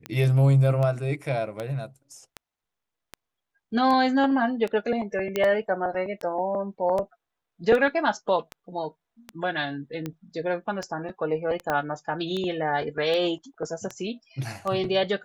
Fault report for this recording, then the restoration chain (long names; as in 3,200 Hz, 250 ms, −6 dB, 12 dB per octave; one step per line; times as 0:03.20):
scratch tick 78 rpm −18 dBFS
0:05.36: click −12 dBFS
0:11.70: click −13 dBFS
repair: click removal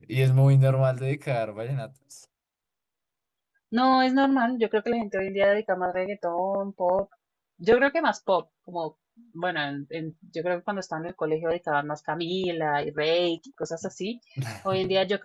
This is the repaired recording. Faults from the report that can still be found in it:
0:11.70: click